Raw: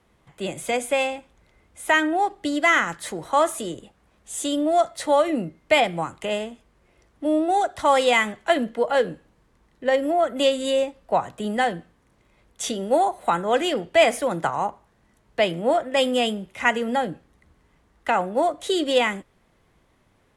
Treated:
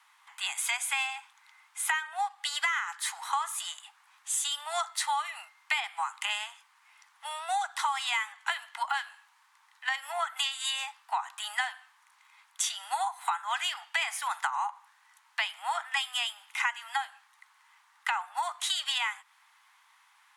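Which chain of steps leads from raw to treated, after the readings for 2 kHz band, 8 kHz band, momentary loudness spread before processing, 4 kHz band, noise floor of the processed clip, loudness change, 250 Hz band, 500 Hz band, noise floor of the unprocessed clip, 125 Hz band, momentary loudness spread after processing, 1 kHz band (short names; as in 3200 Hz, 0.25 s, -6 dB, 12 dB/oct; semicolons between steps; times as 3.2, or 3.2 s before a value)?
-6.0 dB, +0.5 dB, 11 LU, -2.5 dB, -65 dBFS, -9.0 dB, under -40 dB, -27.0 dB, -63 dBFS, under -40 dB, 8 LU, -8.5 dB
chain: steep high-pass 840 Hz 72 dB/oct; compressor 10:1, threshold -33 dBFS, peak gain reduction 18 dB; gain +6 dB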